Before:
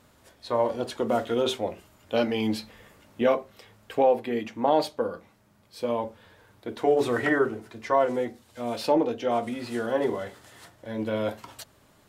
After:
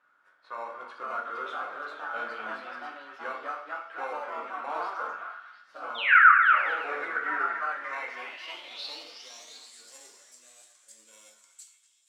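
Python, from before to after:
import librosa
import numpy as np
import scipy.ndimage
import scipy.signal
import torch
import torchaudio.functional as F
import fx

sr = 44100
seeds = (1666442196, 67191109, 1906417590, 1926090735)

p1 = fx.low_shelf(x, sr, hz=130.0, db=-12.0)
p2 = fx.sample_hold(p1, sr, seeds[0], rate_hz=1600.0, jitter_pct=0)
p3 = p1 + (p2 * librosa.db_to_amplitude(-10.0))
p4 = fx.spec_paint(p3, sr, seeds[1], shape='fall', start_s=6.08, length_s=0.24, low_hz=1100.0, high_hz=3000.0, level_db=-15.0)
p5 = fx.echo_pitch(p4, sr, ms=560, semitones=2, count=3, db_per_echo=-3.0)
p6 = fx.rev_plate(p5, sr, seeds[2], rt60_s=0.53, hf_ratio=0.95, predelay_ms=0, drr_db=1.5)
p7 = fx.filter_sweep_bandpass(p6, sr, from_hz=1400.0, to_hz=7500.0, start_s=7.56, end_s=9.67, q=6.0)
p8 = p7 + fx.echo_stepped(p7, sr, ms=237, hz=1500.0, octaves=0.7, feedback_pct=70, wet_db=-5.0, dry=0)
y = p8 * librosa.db_to_amplitude(2.0)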